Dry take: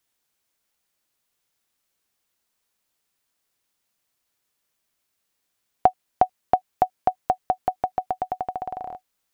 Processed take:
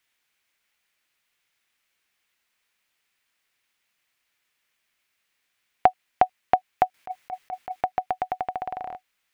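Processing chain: 6.94–7.81 s: compressor with a negative ratio -32 dBFS, ratio -1; peaking EQ 2.2 kHz +13 dB 1.6 oct; trim -3 dB

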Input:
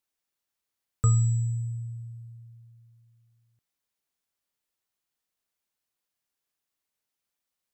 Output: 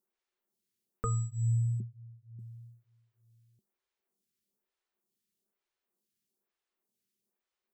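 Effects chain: 1.80–2.39 s: steep low-pass 620 Hz; small resonant body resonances 210/370 Hz, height 15 dB, ringing for 65 ms; lamp-driven phase shifter 1.1 Hz

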